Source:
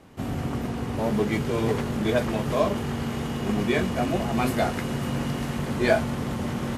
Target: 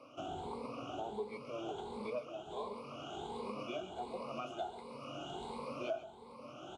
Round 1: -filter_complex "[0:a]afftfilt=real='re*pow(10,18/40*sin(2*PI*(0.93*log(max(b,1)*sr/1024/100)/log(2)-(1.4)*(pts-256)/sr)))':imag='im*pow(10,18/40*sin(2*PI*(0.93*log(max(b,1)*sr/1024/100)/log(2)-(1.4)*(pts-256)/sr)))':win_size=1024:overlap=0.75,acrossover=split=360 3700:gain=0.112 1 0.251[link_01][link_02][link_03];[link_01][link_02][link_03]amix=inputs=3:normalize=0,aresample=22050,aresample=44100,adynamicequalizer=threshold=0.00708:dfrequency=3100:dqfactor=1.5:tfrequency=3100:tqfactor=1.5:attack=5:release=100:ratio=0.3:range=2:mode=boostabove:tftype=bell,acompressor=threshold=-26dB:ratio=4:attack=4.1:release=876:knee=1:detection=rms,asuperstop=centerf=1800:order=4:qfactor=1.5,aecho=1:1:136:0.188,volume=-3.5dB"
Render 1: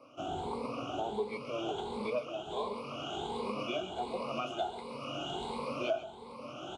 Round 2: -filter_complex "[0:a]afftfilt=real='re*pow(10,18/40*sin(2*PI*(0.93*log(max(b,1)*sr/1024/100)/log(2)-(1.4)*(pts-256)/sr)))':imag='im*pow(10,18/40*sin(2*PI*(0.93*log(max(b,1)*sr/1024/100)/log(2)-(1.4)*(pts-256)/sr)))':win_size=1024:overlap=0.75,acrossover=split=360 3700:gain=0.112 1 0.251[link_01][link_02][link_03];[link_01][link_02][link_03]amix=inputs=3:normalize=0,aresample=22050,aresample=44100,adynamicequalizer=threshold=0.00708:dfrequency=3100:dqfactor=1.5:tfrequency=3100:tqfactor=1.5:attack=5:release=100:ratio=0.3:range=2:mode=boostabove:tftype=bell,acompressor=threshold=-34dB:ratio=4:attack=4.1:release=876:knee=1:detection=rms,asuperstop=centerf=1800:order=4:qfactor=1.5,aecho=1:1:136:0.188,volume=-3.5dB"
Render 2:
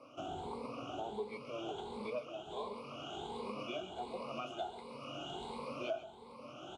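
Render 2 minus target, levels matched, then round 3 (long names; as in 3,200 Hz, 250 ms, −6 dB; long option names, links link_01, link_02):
4,000 Hz band +3.0 dB
-filter_complex "[0:a]afftfilt=real='re*pow(10,18/40*sin(2*PI*(0.93*log(max(b,1)*sr/1024/100)/log(2)-(1.4)*(pts-256)/sr)))':imag='im*pow(10,18/40*sin(2*PI*(0.93*log(max(b,1)*sr/1024/100)/log(2)-(1.4)*(pts-256)/sr)))':win_size=1024:overlap=0.75,acrossover=split=360 3700:gain=0.112 1 0.251[link_01][link_02][link_03];[link_01][link_02][link_03]amix=inputs=3:normalize=0,aresample=22050,aresample=44100,acompressor=threshold=-34dB:ratio=4:attack=4.1:release=876:knee=1:detection=rms,asuperstop=centerf=1800:order=4:qfactor=1.5,aecho=1:1:136:0.188,volume=-3.5dB"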